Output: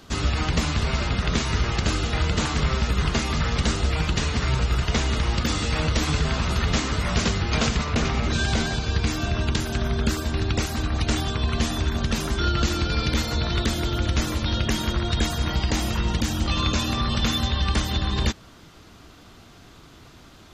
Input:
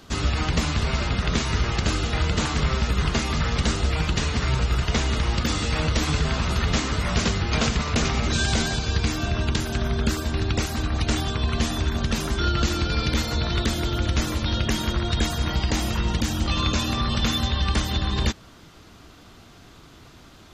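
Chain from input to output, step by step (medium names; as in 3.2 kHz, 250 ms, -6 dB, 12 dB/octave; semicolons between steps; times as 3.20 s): 7.84–9.06 s: treble shelf 5.2 kHz -> 7.8 kHz -9.5 dB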